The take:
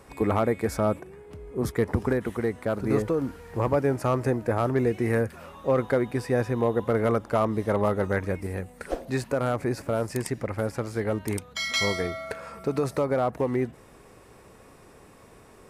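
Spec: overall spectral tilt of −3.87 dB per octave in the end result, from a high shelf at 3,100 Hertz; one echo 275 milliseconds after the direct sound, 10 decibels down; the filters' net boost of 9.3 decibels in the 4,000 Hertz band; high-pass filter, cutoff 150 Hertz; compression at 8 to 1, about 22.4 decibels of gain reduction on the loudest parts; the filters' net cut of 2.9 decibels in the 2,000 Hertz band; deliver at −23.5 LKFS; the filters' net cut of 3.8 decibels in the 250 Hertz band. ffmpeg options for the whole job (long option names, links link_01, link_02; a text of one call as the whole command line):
ffmpeg -i in.wav -af "highpass=150,equalizer=frequency=250:width_type=o:gain=-4,equalizer=frequency=2000:width_type=o:gain=-8,highshelf=frequency=3100:gain=8.5,equalizer=frequency=4000:width_type=o:gain=7.5,acompressor=threshold=-39dB:ratio=8,aecho=1:1:275:0.316,volume=19.5dB" out.wav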